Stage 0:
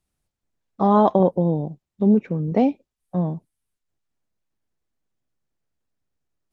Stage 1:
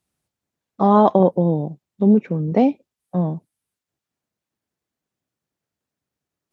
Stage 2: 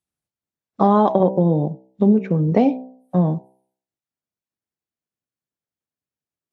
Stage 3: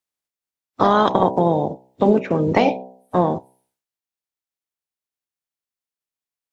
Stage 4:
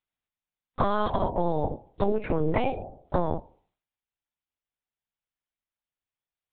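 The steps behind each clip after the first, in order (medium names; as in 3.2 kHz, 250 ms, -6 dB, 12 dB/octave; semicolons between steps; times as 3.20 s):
high-pass 100 Hz 12 dB/octave; trim +2.5 dB
spectral noise reduction 15 dB; de-hum 64.22 Hz, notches 15; compression 4:1, threshold -16 dBFS, peak gain reduction 6.5 dB; trim +4.5 dB
spectral peaks clipped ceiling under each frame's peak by 21 dB
high-pass 70 Hz 24 dB/octave; compression, threshold -21 dBFS, peak gain reduction 10.5 dB; LPC vocoder at 8 kHz pitch kept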